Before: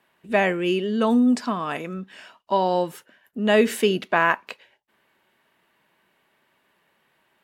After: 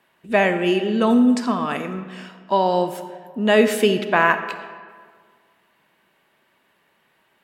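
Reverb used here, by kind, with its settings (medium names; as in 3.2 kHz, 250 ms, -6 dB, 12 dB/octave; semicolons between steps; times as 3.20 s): algorithmic reverb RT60 1.8 s, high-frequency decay 0.6×, pre-delay 5 ms, DRR 9.5 dB; trim +2.5 dB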